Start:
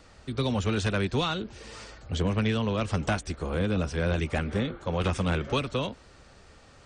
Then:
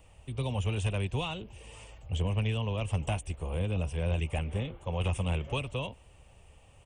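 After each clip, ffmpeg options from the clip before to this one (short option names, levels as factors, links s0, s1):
-af "firequalizer=gain_entry='entry(110,0);entry(220,-11);entry(350,-10);entry(510,-6);entry(950,-4);entry(1400,-18);entry(2800,1);entry(4200,-19);entry(9400,4)':delay=0.05:min_phase=1"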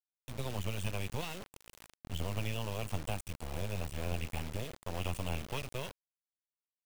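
-af "acrusher=bits=4:dc=4:mix=0:aa=0.000001,volume=0.75"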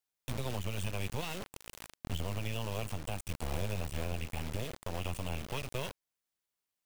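-af "alimiter=level_in=2.24:limit=0.0631:level=0:latency=1:release=398,volume=0.447,volume=2.24"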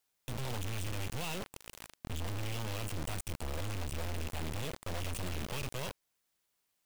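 -af "aeval=exprs='clip(val(0),-1,0.01)':c=same,volume=2.51"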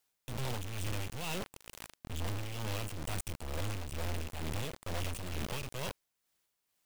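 -af "tremolo=f=2.2:d=0.49,volume=1.26"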